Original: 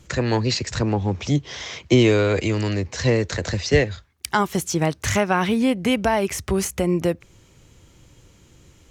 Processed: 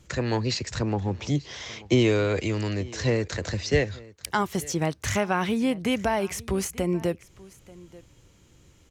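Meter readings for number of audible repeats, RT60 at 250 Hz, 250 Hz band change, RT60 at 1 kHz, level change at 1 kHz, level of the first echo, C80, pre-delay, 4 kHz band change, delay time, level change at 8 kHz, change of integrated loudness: 1, no reverb, -5.0 dB, no reverb, -5.0 dB, -21.5 dB, no reverb, no reverb, -5.0 dB, 886 ms, -5.0 dB, -5.0 dB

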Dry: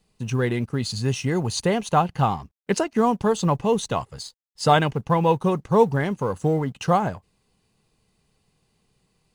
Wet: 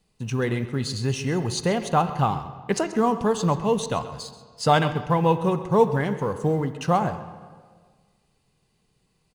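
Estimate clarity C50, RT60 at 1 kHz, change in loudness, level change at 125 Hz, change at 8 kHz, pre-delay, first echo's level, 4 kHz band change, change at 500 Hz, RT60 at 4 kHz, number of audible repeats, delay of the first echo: 11.0 dB, 1.6 s, -1.0 dB, -1.0 dB, -1.5 dB, 6 ms, -16.0 dB, -1.0 dB, -1.0 dB, 1.4 s, 1, 132 ms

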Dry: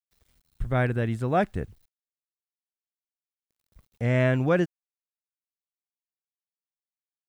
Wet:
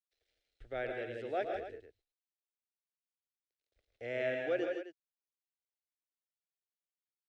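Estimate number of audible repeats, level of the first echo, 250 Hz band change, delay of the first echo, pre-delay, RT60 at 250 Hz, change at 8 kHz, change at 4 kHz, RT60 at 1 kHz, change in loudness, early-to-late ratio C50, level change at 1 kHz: 3, -8.5 dB, -17.0 dB, 113 ms, no reverb, no reverb, no reading, -7.5 dB, no reverb, -12.5 dB, no reverb, -12.5 dB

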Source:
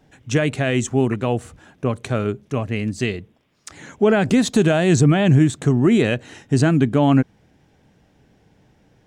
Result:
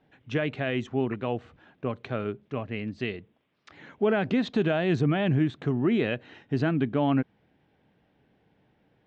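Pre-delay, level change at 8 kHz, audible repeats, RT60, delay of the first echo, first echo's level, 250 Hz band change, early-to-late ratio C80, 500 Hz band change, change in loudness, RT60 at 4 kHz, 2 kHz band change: no reverb, under -25 dB, no echo, no reverb, no echo, no echo, -9.0 dB, no reverb, -8.0 dB, -9.0 dB, no reverb, -7.5 dB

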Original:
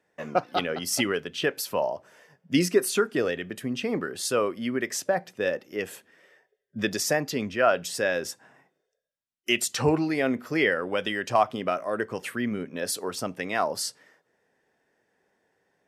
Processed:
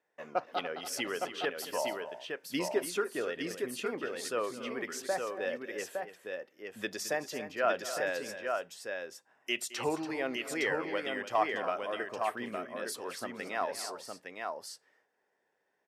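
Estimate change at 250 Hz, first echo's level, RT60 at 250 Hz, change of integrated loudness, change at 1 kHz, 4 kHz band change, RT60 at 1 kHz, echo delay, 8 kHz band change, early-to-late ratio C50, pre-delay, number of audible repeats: -11.0 dB, -16.0 dB, no reverb, -8.5 dB, -5.5 dB, -7.5 dB, no reverb, 217 ms, -9.0 dB, no reverb, no reverb, 3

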